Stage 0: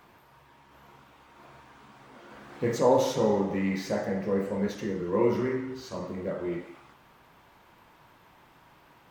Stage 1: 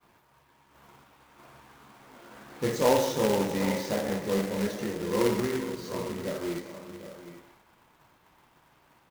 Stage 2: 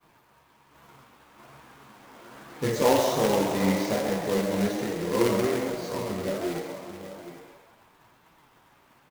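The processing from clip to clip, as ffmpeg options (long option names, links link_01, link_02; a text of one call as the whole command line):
ffmpeg -i in.wav -af "aecho=1:1:105|382|472|750|802:0.126|0.126|0.168|0.2|0.178,acrusher=bits=2:mode=log:mix=0:aa=0.000001,agate=range=-33dB:threshold=-52dB:ratio=3:detection=peak,volume=-1.5dB" out.wav
ffmpeg -i in.wav -filter_complex "[0:a]flanger=delay=6:depth=4.7:regen=54:speed=1.2:shape=sinusoidal,asplit=2[link_01][link_02];[link_02]asplit=5[link_03][link_04][link_05][link_06][link_07];[link_03]adelay=135,afreqshift=110,volume=-8.5dB[link_08];[link_04]adelay=270,afreqshift=220,volume=-14.9dB[link_09];[link_05]adelay=405,afreqshift=330,volume=-21.3dB[link_10];[link_06]adelay=540,afreqshift=440,volume=-27.6dB[link_11];[link_07]adelay=675,afreqshift=550,volume=-34dB[link_12];[link_08][link_09][link_10][link_11][link_12]amix=inputs=5:normalize=0[link_13];[link_01][link_13]amix=inputs=2:normalize=0,volume=6dB" out.wav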